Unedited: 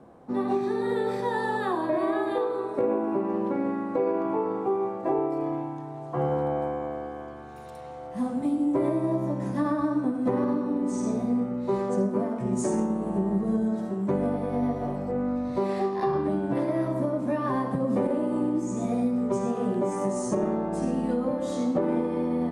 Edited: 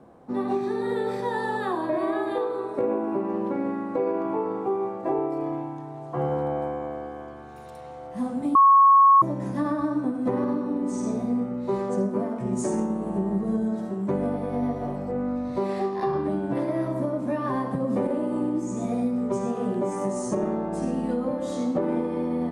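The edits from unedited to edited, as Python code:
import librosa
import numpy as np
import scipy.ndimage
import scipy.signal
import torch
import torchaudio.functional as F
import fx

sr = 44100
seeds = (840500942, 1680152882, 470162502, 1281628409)

y = fx.edit(x, sr, fx.bleep(start_s=8.55, length_s=0.67, hz=1100.0, db=-11.5), tone=tone)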